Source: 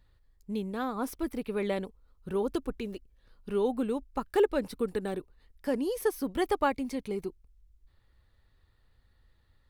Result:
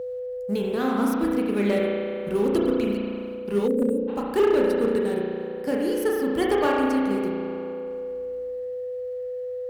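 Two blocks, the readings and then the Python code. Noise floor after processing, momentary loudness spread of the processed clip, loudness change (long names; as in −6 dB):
−32 dBFS, 11 LU, +7.0 dB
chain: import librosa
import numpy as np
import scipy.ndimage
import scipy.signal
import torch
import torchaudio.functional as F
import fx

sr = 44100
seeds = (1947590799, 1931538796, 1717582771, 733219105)

y = fx.law_mismatch(x, sr, coded='A')
y = fx.peak_eq(y, sr, hz=3600.0, db=-4.0, octaves=0.22)
y = fx.rev_spring(y, sr, rt60_s=2.0, pass_ms=(34,), chirp_ms=60, drr_db=-3.0)
y = fx.spec_box(y, sr, start_s=3.67, length_s=0.41, low_hz=590.0, high_hz=6900.0, gain_db=-23)
y = y + 10.0 ** (-39.0 / 20.0) * np.sin(2.0 * np.pi * 500.0 * np.arange(len(y)) / sr)
y = fx.dynamic_eq(y, sr, hz=940.0, q=0.7, threshold_db=-40.0, ratio=4.0, max_db=-6)
y = scipy.signal.sosfilt(scipy.signal.butter(2, 62.0, 'highpass', fs=sr, output='sos'), y)
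y = fx.rider(y, sr, range_db=4, speed_s=2.0)
y = np.clip(10.0 ** (21.0 / 20.0) * y, -1.0, 1.0) / 10.0 ** (21.0 / 20.0)
y = y * librosa.db_to_amplitude(6.5)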